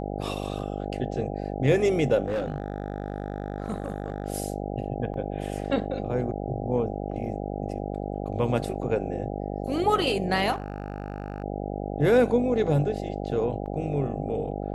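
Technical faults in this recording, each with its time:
mains buzz 50 Hz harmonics 16 −32 dBFS
0:02.26–0:04.26: clipping −23.5 dBFS
0:05.14: drop-out 2.5 ms
0:10.52–0:11.44: clipping −26.5 dBFS
0:13.66: drop-out 5 ms

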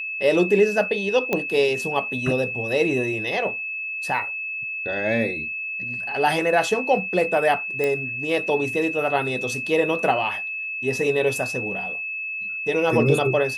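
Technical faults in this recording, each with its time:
whistle 2,600 Hz −27 dBFS
0:01.33: click −9 dBFS
0:07.84: click −12 dBFS

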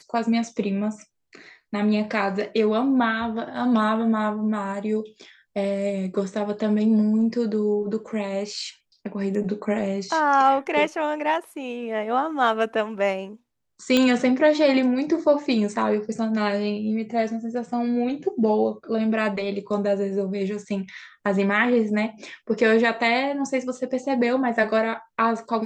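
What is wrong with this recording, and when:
0:13.97: click −7 dBFS

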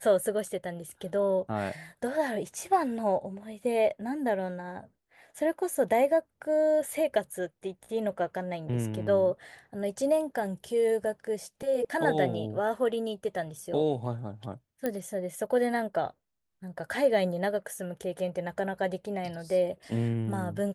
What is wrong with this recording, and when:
0:14.86: click −17 dBFS

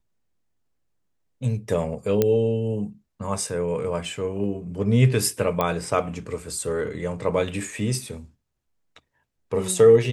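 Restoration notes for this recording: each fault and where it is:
0:02.22: click −7 dBFS
0:05.61: click −10 dBFS

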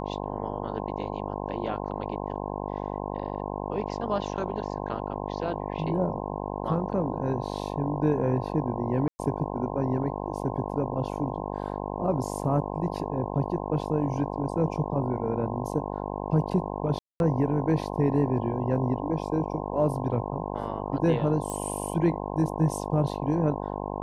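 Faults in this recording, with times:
mains buzz 50 Hz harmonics 21 −33 dBFS
0:09.08–0:09.19: drop-out 110 ms
0:16.99–0:17.20: drop-out 211 ms
0:21.50: click −21 dBFS

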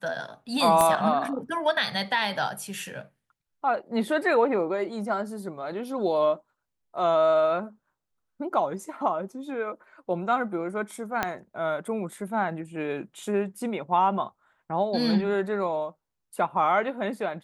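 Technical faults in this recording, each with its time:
0:00.81: click −9 dBFS
0:11.23: click −10 dBFS

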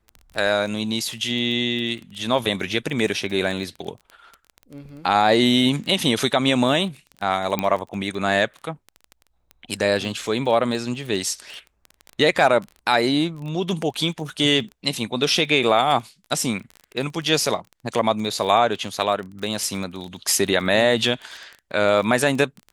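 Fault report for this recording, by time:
surface crackle 19 per second −29 dBFS
0:07.59: click −8 dBFS

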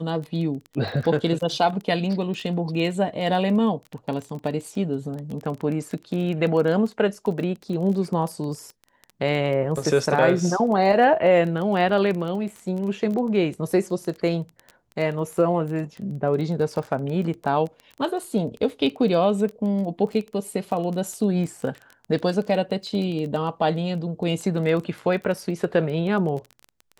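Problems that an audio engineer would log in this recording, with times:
surface crackle 16 per second −29 dBFS
0:00.88: drop-out 2.3 ms

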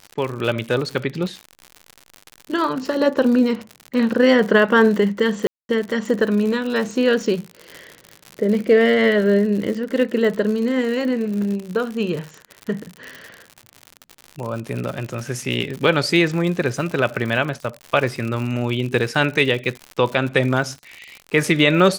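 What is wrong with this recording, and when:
surface crackle 95 per second −26 dBFS
0:05.47–0:05.69: drop-out 221 ms

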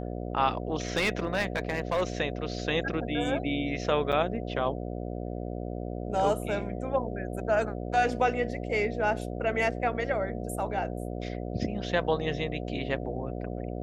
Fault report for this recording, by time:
mains buzz 60 Hz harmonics 12 −35 dBFS
0:00.88–0:02.03: clipping −22.5 dBFS
0:04.12–0:04.13: drop-out 7.2 ms

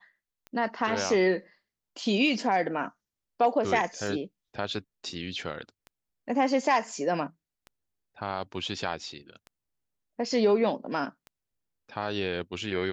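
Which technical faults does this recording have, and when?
scratch tick 33 1/3 rpm −29 dBFS

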